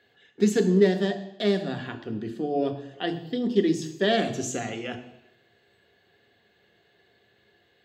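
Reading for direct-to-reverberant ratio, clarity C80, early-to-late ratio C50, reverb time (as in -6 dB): 5.5 dB, 14.0 dB, 11.5 dB, 0.85 s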